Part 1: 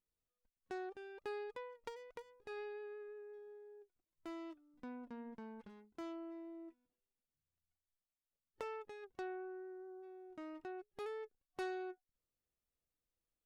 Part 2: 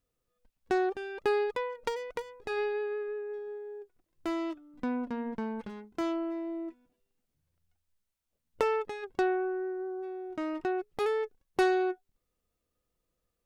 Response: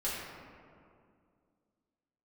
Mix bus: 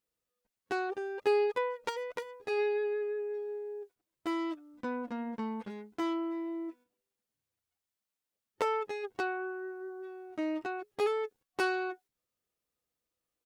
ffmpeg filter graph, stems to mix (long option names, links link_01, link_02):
-filter_complex "[0:a]volume=3dB[link_01];[1:a]highpass=frequency=260:poles=1,adelay=10,volume=-9dB[link_02];[link_01][link_02]amix=inputs=2:normalize=0,highpass=frequency=110:poles=1,acontrast=89,agate=range=-7dB:threshold=-56dB:ratio=16:detection=peak"